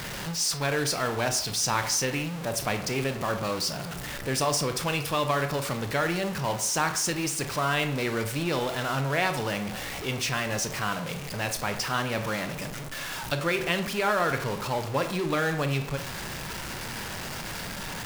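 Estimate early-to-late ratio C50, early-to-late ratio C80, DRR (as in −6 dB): 10.5 dB, 14.0 dB, 7.5 dB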